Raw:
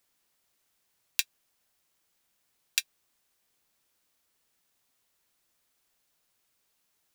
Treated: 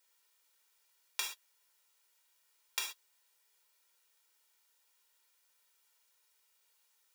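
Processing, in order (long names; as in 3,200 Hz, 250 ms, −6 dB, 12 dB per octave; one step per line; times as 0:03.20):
lower of the sound and its delayed copy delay 2.1 ms
Bessel high-pass filter 730 Hz, order 2
reverb whose tail is shaped and stops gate 150 ms falling, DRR 7 dB
brickwall limiter −18 dBFS, peak gain reduction 10.5 dB
level +2.5 dB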